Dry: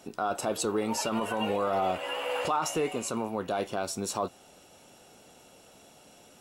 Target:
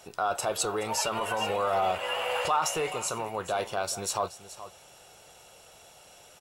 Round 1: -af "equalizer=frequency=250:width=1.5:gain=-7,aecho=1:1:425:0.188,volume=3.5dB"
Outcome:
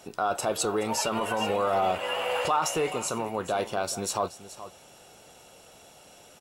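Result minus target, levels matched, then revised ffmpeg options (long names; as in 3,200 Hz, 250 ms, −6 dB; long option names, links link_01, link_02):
250 Hz band +5.5 dB
-af "equalizer=frequency=250:width=1.5:gain=-17.5,aecho=1:1:425:0.188,volume=3.5dB"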